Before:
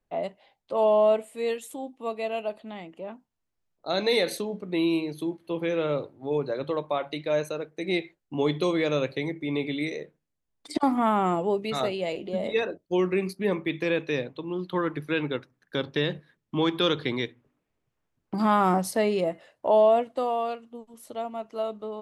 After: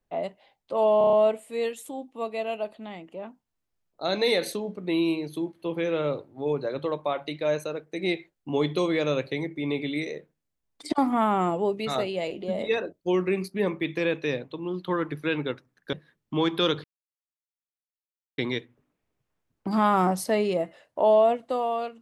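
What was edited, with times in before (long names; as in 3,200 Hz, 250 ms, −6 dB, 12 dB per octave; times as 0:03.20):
0:00.98: stutter 0.03 s, 6 plays
0:15.78–0:16.14: remove
0:17.05: splice in silence 1.54 s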